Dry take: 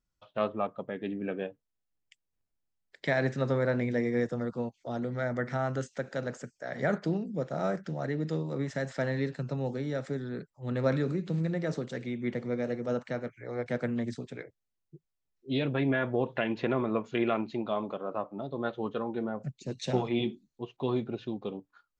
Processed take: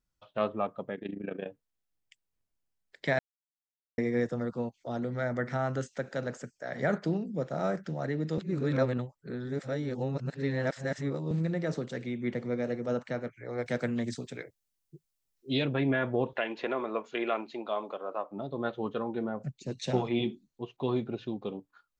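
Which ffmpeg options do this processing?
-filter_complex "[0:a]asettb=1/sr,asplit=3[a][b][c];[a]atrim=end=0.954[d];[b]atrim=start=0.95:end=1.46,asetpts=PTS-STARTPTS,afade=t=in:d=0.004:c=qsin,afade=t=out:st=0.506:d=0.004:c=qsin,tremolo=f=27:d=0.824[e];[c]atrim=start=1.456[f];[d][e]acrossfade=d=0.004:c1=hsin:c2=qsin[g];[g][f]acrossfade=d=0.004:c1=qsin:c2=hsin,asettb=1/sr,asplit=3[h][i][j];[h]atrim=end=13.584[k];[i]atrim=start=13.58:end=15.65,asetpts=PTS-STARTPTS,afade=t=in:d=0.004:c=qsin,afade=t=out:st=2.066:d=0.004:c=qsin,highshelf=f=3.7k:g=10.5[l];[j]atrim=start=15.646[m];[k][l]acrossfade=d=0.004:c1=hsin:c2=qsin[n];[n][m]acrossfade=d=0.004:c1=qsin:c2=hsin,asettb=1/sr,asplit=3[o][p][q];[o]atrim=end=16.334[r];[p]atrim=start=16.33:end=18.31,asetpts=PTS-STARTPTS,afade=t=in:d=0.004:c=qsin,afade=t=out:st=1.976:d=0.004:c=qsin,highpass=400[s];[q]atrim=start=18.306[t];[r][s]acrossfade=d=0.004:c1=hsin:c2=qsin[u];[u][t]acrossfade=d=0.004:c1=qsin:c2=hsin,asplit=5[v][w][x][y][z];[v]atrim=end=3.19,asetpts=PTS-STARTPTS,afade=t=out:st=3.186:d=0.004:c=hsin[aa];[w]atrim=start=3.19:end=3.98,asetpts=PTS-STARTPTS,volume=0[ab];[x]atrim=start=3.98:end=8.382,asetpts=PTS-STARTPTS,afade=t=in:d=0.004:c=hsin[ac];[y]atrim=start=8.378:end=11.312,asetpts=PTS-STARTPTS,areverse[ad];[z]atrim=start=11.308[ae];[aa][ab][ac]concat=n=3:v=0:a=1[af];[af][ad]acrossfade=d=0.004:c1=hsin:c2=hsin[ag];[ag][ae]acrossfade=d=0.004:c1=hsin:c2=hsin"

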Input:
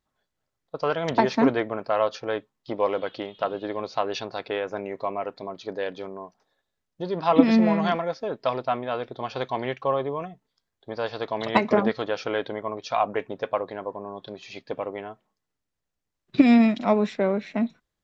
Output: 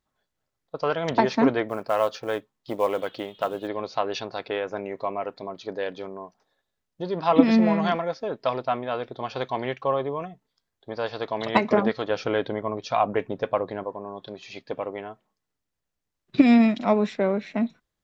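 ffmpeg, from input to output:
-filter_complex "[0:a]asettb=1/sr,asplit=3[a][b][c];[a]atrim=end=1.694[d];[b]atrim=start=1.69:end=3.68,asetpts=PTS-STARTPTS,afade=t=in:d=0.004:c=qsin,afade=t=out:st=1.986:d=0.004:c=qsin,acrusher=bits=7:mode=log:mix=0:aa=0.000001[e];[c]atrim=start=3.676[f];[d][e]acrossfade=d=0.004:c1=hsin:c2=qsin[g];[g][f]acrossfade=d=0.004:c1=qsin:c2=hsin,asettb=1/sr,asplit=3[h][i][j];[h]atrim=end=12.104[k];[i]atrim=start=12.1:end=13.84,asetpts=PTS-STARTPTS,afade=t=in:d=0.004:c=qsin,afade=t=out:st=1.736:d=0.004:c=qsin,lowshelf=f=300:g=8[l];[j]atrim=start=13.836[m];[k][l]acrossfade=d=0.004:c1=hsin:c2=qsin[n];[n][m]acrossfade=d=0.004:c1=qsin:c2=hsin"

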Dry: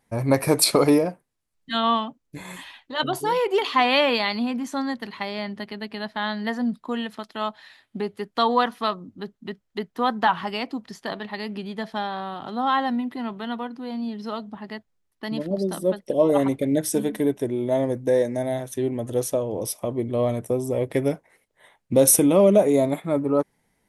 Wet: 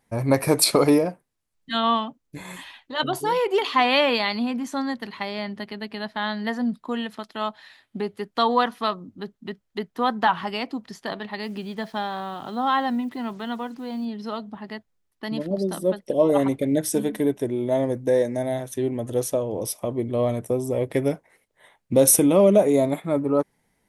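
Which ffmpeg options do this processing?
-filter_complex "[0:a]asettb=1/sr,asplit=3[a][b][c];[a]atrim=end=11.434[d];[b]atrim=start=11.43:end=14.05,asetpts=PTS-STARTPTS,afade=t=in:d=0.004:c=qsin,afade=t=out:st=2.616:d=0.004:c=qsin,acrusher=bits=8:mix=0:aa=0.5[e];[c]atrim=start=14.046[f];[d][e]acrossfade=d=0.004:c1=hsin:c2=qsin[g];[g][f]acrossfade=d=0.004:c1=qsin:c2=hsin"

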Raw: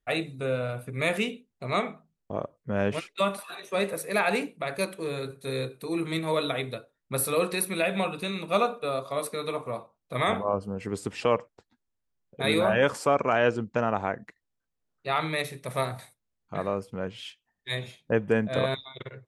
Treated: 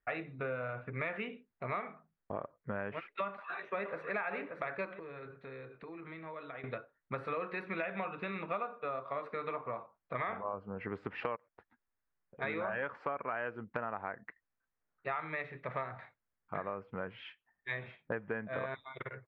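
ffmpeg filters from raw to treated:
-filter_complex "[0:a]asplit=2[a][b];[b]afade=t=in:st=3.27:d=0.01,afade=t=out:st=4.1:d=0.01,aecho=0:1:580|1160|1740:0.473151|0.0709727|0.0106459[c];[a][c]amix=inputs=2:normalize=0,asettb=1/sr,asplit=3[d][e][f];[d]atrim=end=4.994[g];[e]atrim=start=4.99:end=6.64,asetpts=PTS-STARTPTS,afade=t=in:d=0.004:c=qsin,afade=t=out:st=1.646:d=0.004:c=qsin,acompressor=threshold=-41dB:ratio=6:attack=3.2:release=140:knee=1:detection=peak[h];[f]atrim=start=6.636[i];[g][h]acrossfade=d=0.004:c1=hsin:c2=qsin[j];[j][i]acrossfade=d=0.004:c1=qsin:c2=hsin,asplit=3[k][l][m];[k]afade=t=out:st=11.35:d=0.02[n];[l]acompressor=threshold=-43dB:ratio=6:attack=3.2:release=140:knee=1:detection=peak,afade=t=in:st=11.35:d=0.02,afade=t=out:st=12.41:d=0.02[o];[m]afade=t=in:st=12.41:d=0.02[p];[n][o][p]amix=inputs=3:normalize=0,lowpass=f=1.8k:w=0.5412,lowpass=f=1.8k:w=1.3066,tiltshelf=f=1.1k:g=-9,acompressor=threshold=-37dB:ratio=6,volume=2.5dB"

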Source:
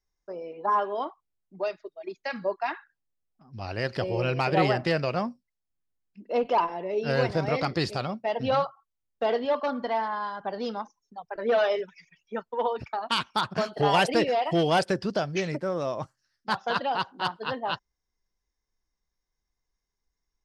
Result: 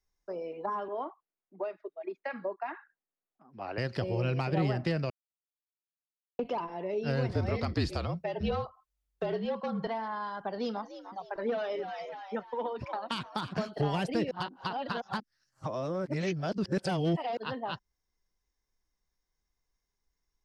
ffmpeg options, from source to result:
-filter_complex "[0:a]asettb=1/sr,asplit=3[a][b][c];[a]atrim=end=0.884[d];[b]atrim=start=0.88:end=3.78,asetpts=PTS-STARTPTS,afade=t=in:d=0.004:c=qsin,afade=t=out:st=2.896:d=0.004:c=qsin,acrossover=split=220 2500:gain=0.0891 1 0.0891[e][f][g];[e][f][g]amix=inputs=3:normalize=0[h];[c]atrim=start=3.776[i];[d][h]acrossfade=d=0.004:c1=hsin:c2=qsin[j];[j][i]acrossfade=d=0.004:c1=qsin:c2=hsin,asettb=1/sr,asplit=3[k][l][m];[k]atrim=end=7.324[n];[l]atrim=start=7.32:end=9.87,asetpts=PTS-STARTPTS,afade=t=in:d=0.004:c=qsin,afade=t=out:st=2.546:d=0.004:c=qsin,afreqshift=-49[o];[m]atrim=start=9.866[p];[n][o]acrossfade=d=0.004:c1=hsin:c2=qsin[q];[q][p]acrossfade=d=0.004:c1=qsin:c2=hsin,asettb=1/sr,asplit=3[r][s][t];[r]atrim=end=10.444[u];[s]atrim=start=10.44:end=13.66,asetpts=PTS-STARTPTS,afade=t=in:d=0.004:c=qsin,afade=t=out:st=3.216:d=0.004:c=qsin,asplit=5[v][w][x][y][z];[w]adelay=299,afreqshift=84,volume=-14.5dB[aa];[x]adelay=598,afreqshift=168,volume=-22dB[ab];[y]adelay=897,afreqshift=252,volume=-29.6dB[ac];[z]adelay=1196,afreqshift=336,volume=-37.1dB[ad];[v][aa][ab][ac][ad]amix=inputs=5:normalize=0,atrim=end_sample=142002[ae];[t]atrim=start=13.656[af];[u][ae]acrossfade=d=0.004:c1=hsin:c2=qsin[ag];[ag][af]acrossfade=d=0.004:c1=qsin:c2=hsin,asplit=5[ah][ai][aj][ak][al];[ah]atrim=end=5.1,asetpts=PTS-STARTPTS,afade=t=out:st=5.096:d=0.004:c=hsin[am];[ai]atrim=start=5.1:end=6.39,asetpts=PTS-STARTPTS,volume=0[an];[aj]atrim=start=6.39:end=14.312,asetpts=PTS-STARTPTS,afade=t=in:d=0.004:c=hsin[ao];[ak]atrim=start=14.308:end=17.372,asetpts=PTS-STARTPTS,areverse[ap];[al]atrim=start=17.368[aq];[am][an][ao]concat=n=3:v=0:a=1[ar];[ar][ap]acrossfade=d=0.004:c1=hsin:c2=hsin[as];[as][aq]acrossfade=d=0.004:c1=hsin:c2=hsin,acrossover=split=290[at][au];[au]acompressor=threshold=-33dB:ratio=6[av];[at][av]amix=inputs=2:normalize=0"

